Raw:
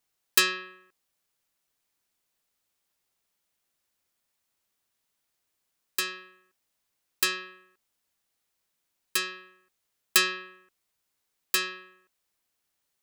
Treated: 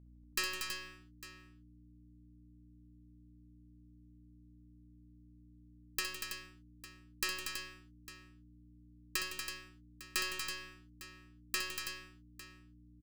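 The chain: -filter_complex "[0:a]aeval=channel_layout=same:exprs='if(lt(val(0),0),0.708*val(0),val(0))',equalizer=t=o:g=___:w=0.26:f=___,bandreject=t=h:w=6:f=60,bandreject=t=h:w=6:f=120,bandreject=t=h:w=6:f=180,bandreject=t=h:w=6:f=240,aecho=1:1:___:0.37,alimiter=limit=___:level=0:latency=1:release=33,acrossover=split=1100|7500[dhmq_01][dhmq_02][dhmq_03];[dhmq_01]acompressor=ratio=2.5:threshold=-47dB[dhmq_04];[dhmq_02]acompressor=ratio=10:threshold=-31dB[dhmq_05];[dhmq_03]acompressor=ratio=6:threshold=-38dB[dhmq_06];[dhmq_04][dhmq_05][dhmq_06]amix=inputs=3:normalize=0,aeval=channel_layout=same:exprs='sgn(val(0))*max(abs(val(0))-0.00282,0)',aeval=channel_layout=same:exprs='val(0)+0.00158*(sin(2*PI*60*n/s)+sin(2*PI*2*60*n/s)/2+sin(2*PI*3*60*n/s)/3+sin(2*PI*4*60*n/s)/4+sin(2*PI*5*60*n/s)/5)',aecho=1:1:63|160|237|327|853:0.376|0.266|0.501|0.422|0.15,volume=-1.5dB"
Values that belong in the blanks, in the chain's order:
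-10, 3700, 3.3, -13.5dB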